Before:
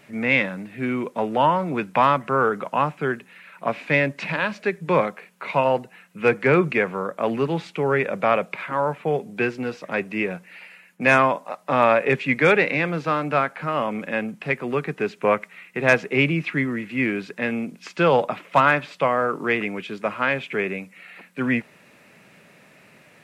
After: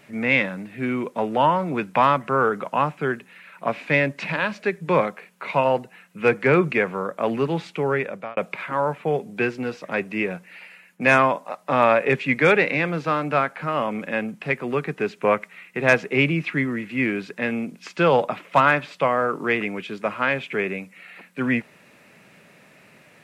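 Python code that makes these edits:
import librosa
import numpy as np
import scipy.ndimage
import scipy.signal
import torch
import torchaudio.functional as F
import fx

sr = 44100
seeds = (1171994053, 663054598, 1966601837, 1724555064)

y = fx.edit(x, sr, fx.fade_out_span(start_s=7.65, length_s=0.72, curve='qsin'), tone=tone)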